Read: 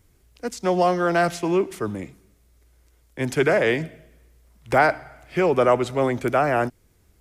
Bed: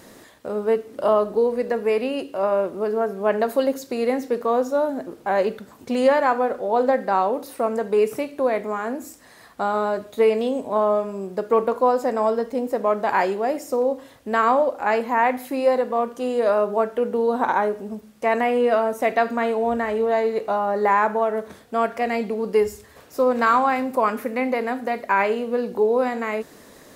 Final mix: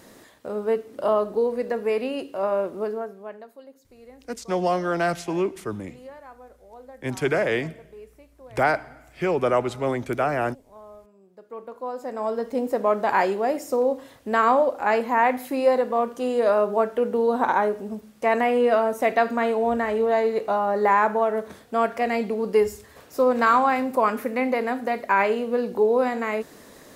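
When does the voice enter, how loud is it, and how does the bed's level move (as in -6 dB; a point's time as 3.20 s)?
3.85 s, -3.5 dB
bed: 2.84 s -3 dB
3.54 s -25.5 dB
11.22 s -25.5 dB
12.57 s -0.5 dB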